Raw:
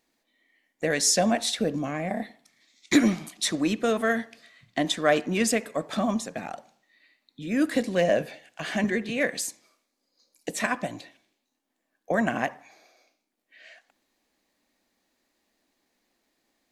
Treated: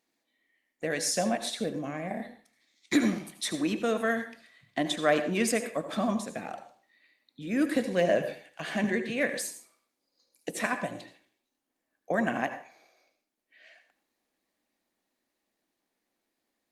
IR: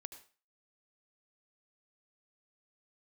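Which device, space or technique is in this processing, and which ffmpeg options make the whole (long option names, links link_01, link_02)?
far-field microphone of a smart speaker: -filter_complex "[1:a]atrim=start_sample=2205[link_01];[0:a][link_01]afir=irnorm=-1:irlink=0,highpass=frequency=82:poles=1,dynaudnorm=framelen=240:gausssize=31:maxgain=3dB" -ar 48000 -c:a libopus -b:a 48k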